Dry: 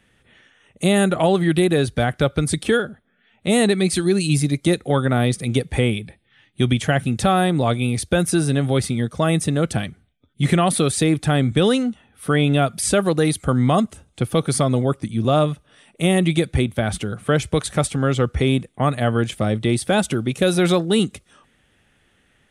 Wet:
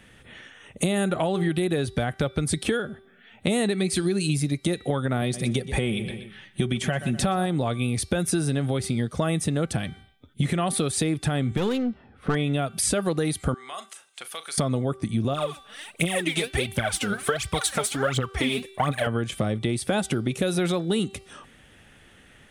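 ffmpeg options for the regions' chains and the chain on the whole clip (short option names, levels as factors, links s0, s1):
-filter_complex "[0:a]asettb=1/sr,asplit=3[s0][s1][s2];[s0]atrim=end=5.214[s3];[s1]atrim=start=5.21:end=7.46,asetpts=PTS-STARTPTS,afade=t=in:d=0.004:c=qsin,afade=t=out:st=2.246:d=0.004:c=qsin,aecho=1:1:5.3:0.45,atrim=end_sample=99225,aecho=1:1:124|248|372:0.15|0.0569|0.0216,atrim=end_sample=99225[s4];[s2]atrim=start=7.456[s5];[s3][s4]acrossfade=d=0.004:c1=hsin:c2=qsin[s6];[s6][s5]acrossfade=d=0.004:c1=qsin:c2=hsin,asettb=1/sr,asplit=3[s7][s8][s9];[s7]atrim=end=11.574[s10];[s8]atrim=start=11.57:end=12.35,asetpts=PTS-STARTPTS,afade=t=in:d=0.004:c=qsin,afade=t=out:st=0.776:d=0.004:c=qsin,adynamicsmooth=sensitivity=2.5:basefreq=1600,aeval=exprs='(tanh(3.55*val(0)+0.45)-tanh(0.45))/3.55':c=same[s11];[s9]atrim=start=12.346[s12];[s10][s11]acrossfade=d=0.004:c1=hsin:c2=qsin[s13];[s13][s12]acrossfade=d=0.004:c1=qsin:c2=hsin,asettb=1/sr,asplit=3[s14][s15][s16];[s14]atrim=end=13.544[s17];[s15]atrim=start=13.54:end=14.58,asetpts=PTS-STARTPTS,afade=t=in:d=0.004:c=qsin,afade=t=out:st=1.036:d=0.004:c=qsin,highpass=1300,acompressor=threshold=0.00316:ratio=2:attack=3.2:release=140:knee=1:detection=peak,asplit=2[s18][s19];[s19]adelay=38,volume=0.224[s20];[s18][s20]amix=inputs=2:normalize=0,atrim=end_sample=45864[s21];[s16]atrim=start=14.576[s22];[s17][s21]acrossfade=d=0.004:c1=hsin:c2=qsin[s23];[s23][s22]acrossfade=d=0.004:c1=qsin:c2=hsin,asettb=1/sr,asplit=3[s24][s25][s26];[s24]atrim=end=15.334[s27];[s25]atrim=start=15.33:end=19.07,asetpts=PTS-STARTPTS,afade=t=in:d=0.004:c=qsin,afade=t=out:st=3.736:d=0.004:c=qsin,lowshelf=f=470:g=-10.5,aphaser=in_gain=1:out_gain=1:delay=5:decay=0.76:speed=1.4:type=triangular[s28];[s26]atrim=start=19.066[s29];[s27][s28]acrossfade=d=0.004:c1=hsin:c2=qsin[s30];[s30][s29]acrossfade=d=0.004:c1=qsin:c2=hsin,bandreject=f=388.2:t=h:w=4,bandreject=f=776.4:t=h:w=4,bandreject=f=1164.6:t=h:w=4,bandreject=f=1552.8:t=h:w=4,bandreject=f=1941:t=h:w=4,bandreject=f=2329.2:t=h:w=4,bandreject=f=2717.4:t=h:w=4,bandreject=f=3105.6:t=h:w=4,bandreject=f=3493.8:t=h:w=4,bandreject=f=3882:t=h:w=4,bandreject=f=4270.2:t=h:w=4,bandreject=f=4658.4:t=h:w=4,bandreject=f=5046.6:t=h:w=4,bandreject=f=5434.8:t=h:w=4,alimiter=limit=0.299:level=0:latency=1:release=373,acompressor=threshold=0.0316:ratio=5,volume=2.37"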